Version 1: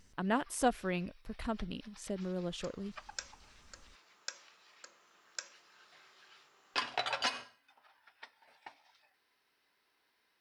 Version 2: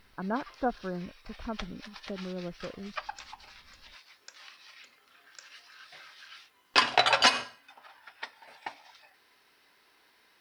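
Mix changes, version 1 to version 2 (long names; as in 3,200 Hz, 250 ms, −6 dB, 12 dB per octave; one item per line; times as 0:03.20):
speech: add linear-phase brick-wall low-pass 1,700 Hz
first sound +12.0 dB
second sound −8.5 dB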